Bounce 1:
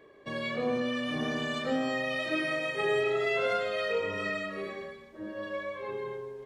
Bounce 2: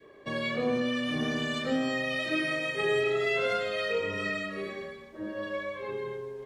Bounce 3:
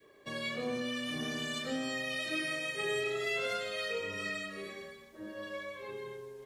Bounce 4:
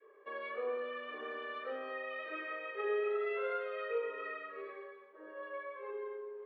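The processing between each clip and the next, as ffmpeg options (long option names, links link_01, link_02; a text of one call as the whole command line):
ffmpeg -i in.wav -af "adynamicequalizer=threshold=0.00562:dfrequency=840:dqfactor=0.9:tfrequency=840:tqfactor=0.9:attack=5:release=100:ratio=0.375:range=3:mode=cutabove:tftype=bell,volume=3dB" out.wav
ffmpeg -i in.wav -af "crystalizer=i=3:c=0,volume=-8dB" out.wav
ffmpeg -i in.wav -af "highpass=frequency=430:width=0.5412,highpass=frequency=430:width=1.3066,equalizer=frequency=440:width_type=q:width=4:gain=9,equalizer=frequency=680:width_type=q:width=4:gain=-7,equalizer=frequency=1200:width_type=q:width=4:gain=6,equalizer=frequency=2000:width_type=q:width=4:gain=-4,lowpass=frequency=2100:width=0.5412,lowpass=frequency=2100:width=1.3066,volume=-1.5dB" out.wav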